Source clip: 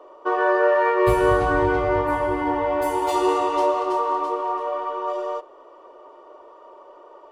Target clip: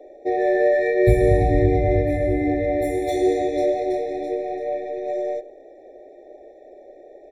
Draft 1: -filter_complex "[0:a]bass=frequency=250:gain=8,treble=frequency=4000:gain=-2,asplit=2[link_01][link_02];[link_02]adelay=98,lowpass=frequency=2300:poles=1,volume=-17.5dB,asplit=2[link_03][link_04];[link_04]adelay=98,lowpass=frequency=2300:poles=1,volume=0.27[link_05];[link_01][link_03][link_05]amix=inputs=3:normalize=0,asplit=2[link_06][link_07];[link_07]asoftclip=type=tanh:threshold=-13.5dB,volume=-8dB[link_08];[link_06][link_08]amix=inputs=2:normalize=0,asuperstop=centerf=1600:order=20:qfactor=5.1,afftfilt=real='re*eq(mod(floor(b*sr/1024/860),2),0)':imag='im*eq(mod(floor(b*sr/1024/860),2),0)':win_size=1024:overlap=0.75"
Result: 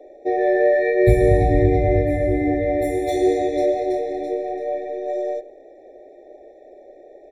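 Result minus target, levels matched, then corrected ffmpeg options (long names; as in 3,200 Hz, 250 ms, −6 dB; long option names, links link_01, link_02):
soft clipping: distortion −9 dB
-filter_complex "[0:a]bass=frequency=250:gain=8,treble=frequency=4000:gain=-2,asplit=2[link_01][link_02];[link_02]adelay=98,lowpass=frequency=2300:poles=1,volume=-17.5dB,asplit=2[link_03][link_04];[link_04]adelay=98,lowpass=frequency=2300:poles=1,volume=0.27[link_05];[link_01][link_03][link_05]amix=inputs=3:normalize=0,asplit=2[link_06][link_07];[link_07]asoftclip=type=tanh:threshold=-25.5dB,volume=-8dB[link_08];[link_06][link_08]amix=inputs=2:normalize=0,asuperstop=centerf=1600:order=20:qfactor=5.1,afftfilt=real='re*eq(mod(floor(b*sr/1024/860),2),0)':imag='im*eq(mod(floor(b*sr/1024/860),2),0)':win_size=1024:overlap=0.75"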